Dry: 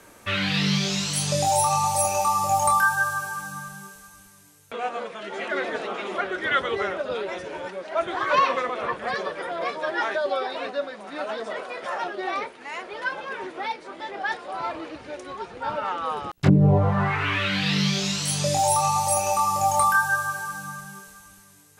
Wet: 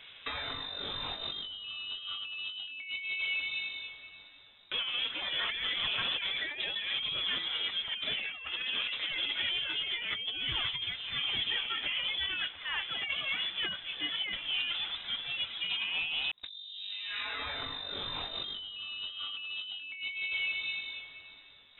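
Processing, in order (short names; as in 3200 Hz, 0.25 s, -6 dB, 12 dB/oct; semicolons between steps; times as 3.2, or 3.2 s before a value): negative-ratio compressor -31 dBFS, ratio -1; inverted band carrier 3800 Hz; gain -5.5 dB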